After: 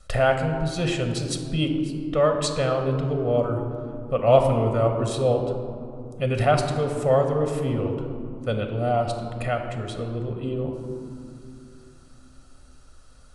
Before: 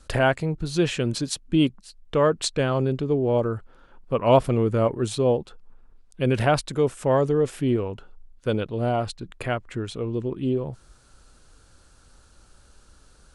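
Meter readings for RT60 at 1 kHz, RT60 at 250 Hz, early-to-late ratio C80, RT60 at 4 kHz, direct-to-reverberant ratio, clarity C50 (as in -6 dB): 2.6 s, 3.8 s, 7.0 dB, 1.1 s, 4.0 dB, 6.0 dB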